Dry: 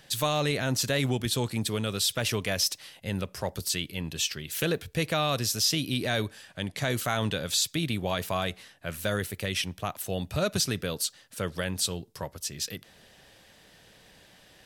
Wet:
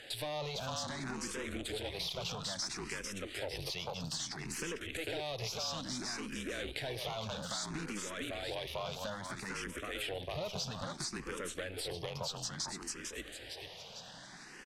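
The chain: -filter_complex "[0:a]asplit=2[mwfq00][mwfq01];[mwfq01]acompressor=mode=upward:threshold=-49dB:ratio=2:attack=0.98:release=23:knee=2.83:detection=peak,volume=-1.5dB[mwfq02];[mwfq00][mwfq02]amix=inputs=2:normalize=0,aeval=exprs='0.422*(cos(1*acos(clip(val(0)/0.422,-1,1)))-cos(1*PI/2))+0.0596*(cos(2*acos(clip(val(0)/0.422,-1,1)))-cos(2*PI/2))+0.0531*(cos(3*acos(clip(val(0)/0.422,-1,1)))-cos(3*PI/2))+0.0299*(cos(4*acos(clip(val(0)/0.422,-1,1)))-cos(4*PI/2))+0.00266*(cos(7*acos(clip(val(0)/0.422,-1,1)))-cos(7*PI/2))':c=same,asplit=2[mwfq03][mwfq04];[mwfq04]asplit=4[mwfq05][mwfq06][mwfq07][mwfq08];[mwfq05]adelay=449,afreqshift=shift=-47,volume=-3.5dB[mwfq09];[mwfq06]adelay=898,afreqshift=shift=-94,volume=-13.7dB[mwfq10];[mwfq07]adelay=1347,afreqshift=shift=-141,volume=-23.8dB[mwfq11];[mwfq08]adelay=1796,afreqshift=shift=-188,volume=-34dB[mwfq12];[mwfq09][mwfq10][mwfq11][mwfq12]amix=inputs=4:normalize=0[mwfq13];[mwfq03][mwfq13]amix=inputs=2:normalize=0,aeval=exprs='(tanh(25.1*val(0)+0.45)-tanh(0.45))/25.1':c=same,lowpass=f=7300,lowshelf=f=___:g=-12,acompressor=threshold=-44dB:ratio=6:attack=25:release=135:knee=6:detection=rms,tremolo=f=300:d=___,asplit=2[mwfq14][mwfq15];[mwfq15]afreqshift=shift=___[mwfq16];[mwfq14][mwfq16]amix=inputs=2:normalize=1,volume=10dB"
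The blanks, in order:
120, 0.519, 0.6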